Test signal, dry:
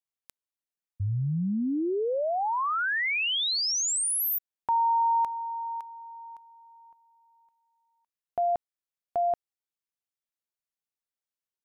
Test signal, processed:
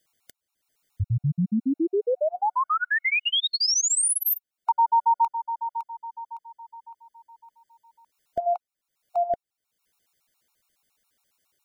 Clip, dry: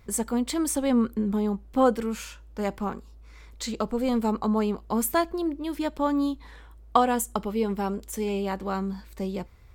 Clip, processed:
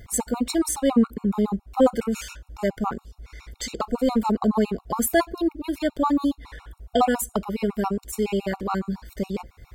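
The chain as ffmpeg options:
-af "acompressor=mode=upward:threshold=-32dB:ratio=1.5:attack=0.52:release=303:knee=2.83:detection=peak,afftfilt=real='re*gt(sin(2*PI*7.2*pts/sr)*(1-2*mod(floor(b*sr/1024/730),2)),0)':imag='im*gt(sin(2*PI*7.2*pts/sr)*(1-2*mod(floor(b*sr/1024/730),2)),0)':win_size=1024:overlap=0.75,volume=6dB"

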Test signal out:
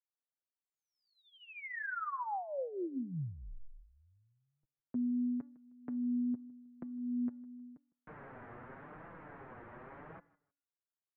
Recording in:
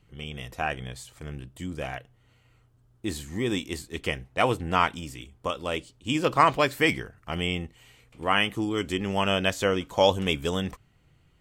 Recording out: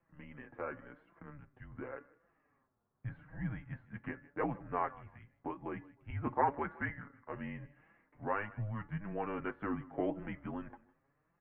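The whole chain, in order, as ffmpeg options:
-filter_complex "[0:a]highpass=f=300:t=q:w=0.5412,highpass=f=300:t=q:w=1.307,lowpass=f=2k:t=q:w=0.5176,lowpass=f=2k:t=q:w=0.7071,lowpass=f=2k:t=q:w=1.932,afreqshift=-210,aecho=1:1:156|312:0.0708|0.0163,asplit=2[a][b];[b]acompressor=threshold=-40dB:ratio=6,volume=2.5dB[c];[a][c]amix=inputs=2:normalize=0,bandreject=f=285.8:t=h:w=4,bandreject=f=571.6:t=h:w=4,bandreject=f=857.4:t=h:w=4,bandreject=f=1.1432k:t=h:w=4,bandreject=f=1.429k:t=h:w=4,bandreject=f=1.7148k:t=h:w=4,bandreject=f=2.0006k:t=h:w=4,flanger=delay=5.8:depth=2.8:regen=14:speed=0.88:shape=triangular,volume=-9dB"

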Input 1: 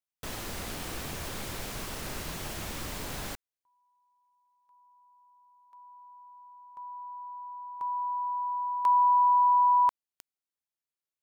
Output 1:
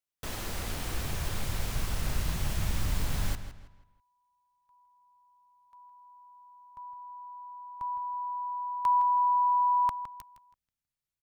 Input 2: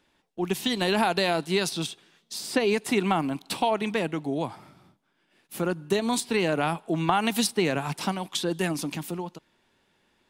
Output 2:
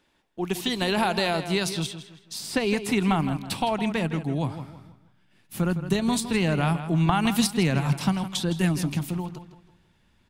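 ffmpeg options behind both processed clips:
-filter_complex "[0:a]asubboost=boost=6.5:cutoff=150,asplit=2[a][b];[b]adelay=162,lowpass=f=4.9k:p=1,volume=-11dB,asplit=2[c][d];[d]adelay=162,lowpass=f=4.9k:p=1,volume=0.35,asplit=2[e][f];[f]adelay=162,lowpass=f=4.9k:p=1,volume=0.35,asplit=2[g][h];[h]adelay=162,lowpass=f=4.9k:p=1,volume=0.35[i];[a][c][e][g][i]amix=inputs=5:normalize=0"

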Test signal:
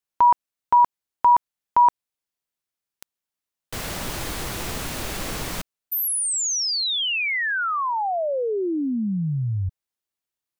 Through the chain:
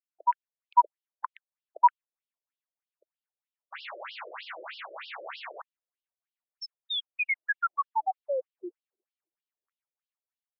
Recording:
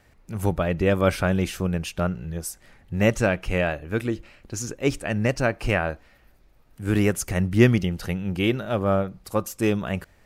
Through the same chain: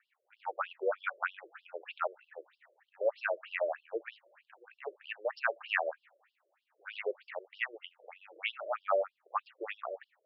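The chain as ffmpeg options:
-filter_complex "[0:a]dynaudnorm=f=130:g=7:m=7.5dB,acrossover=split=520 3000:gain=0.0794 1 0.158[a][b][c];[a][b][c]amix=inputs=3:normalize=0,afftfilt=real='re*between(b*sr/1024,430*pow(4000/430,0.5+0.5*sin(2*PI*3.2*pts/sr))/1.41,430*pow(4000/430,0.5+0.5*sin(2*PI*3.2*pts/sr))*1.41)':imag='im*between(b*sr/1024,430*pow(4000/430,0.5+0.5*sin(2*PI*3.2*pts/sr))/1.41,430*pow(4000/430,0.5+0.5*sin(2*PI*3.2*pts/sr))*1.41)':win_size=1024:overlap=0.75,volume=-6dB"

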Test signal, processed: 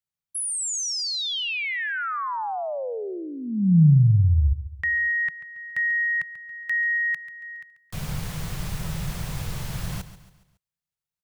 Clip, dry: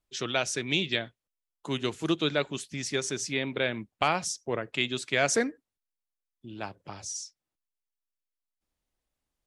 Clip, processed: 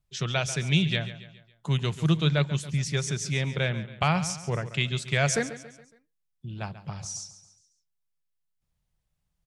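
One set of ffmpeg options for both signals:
-af "lowshelf=f=210:t=q:w=3:g=8.5,aecho=1:1:139|278|417|556:0.2|0.0898|0.0404|0.0182"

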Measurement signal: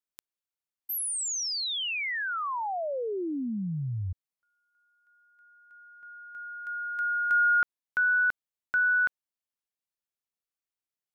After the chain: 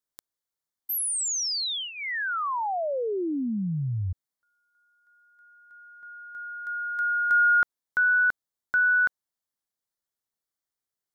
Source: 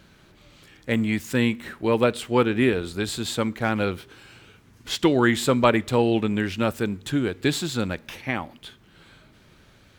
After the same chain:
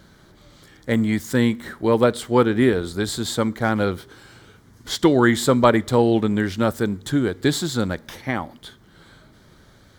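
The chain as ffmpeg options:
-af "equalizer=f=2.6k:t=o:w=0.32:g=-14.5,volume=3.5dB"

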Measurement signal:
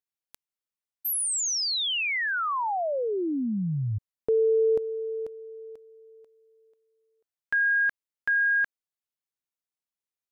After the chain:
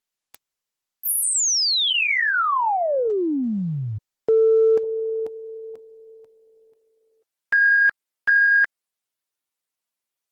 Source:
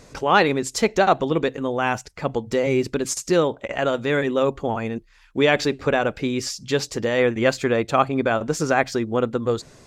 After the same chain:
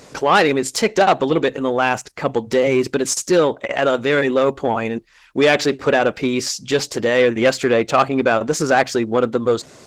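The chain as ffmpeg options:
-af "asoftclip=type=tanh:threshold=-13dB,highpass=f=230:p=1,volume=7.5dB" -ar 48000 -c:a libopus -b:a 16k

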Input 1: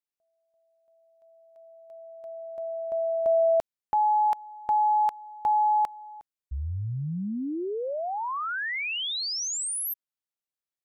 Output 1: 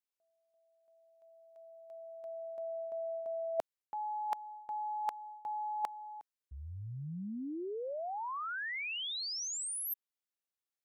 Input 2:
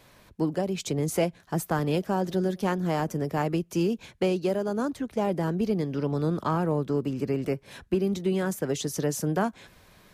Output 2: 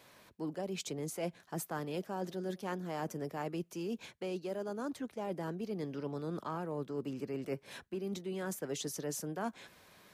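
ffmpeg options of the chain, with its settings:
-af "highpass=f=250:p=1,areverse,acompressor=threshold=-35dB:ratio=10:attack=59:release=267:knee=6:detection=peak,areverse,volume=-3dB"

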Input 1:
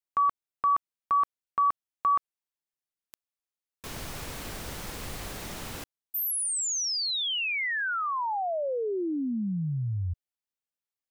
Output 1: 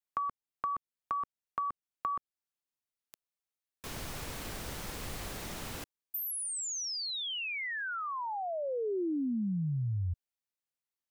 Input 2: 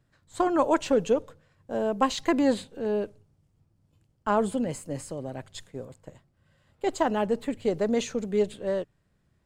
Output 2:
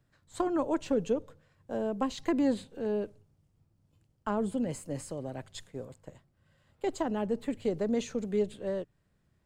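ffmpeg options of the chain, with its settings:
-filter_complex "[0:a]acrossover=split=420[a][b];[b]acompressor=threshold=-35dB:ratio=2.5:attack=27:release=591:knee=2.83:detection=peak[c];[a][c]amix=inputs=2:normalize=0,volume=-2.5dB"

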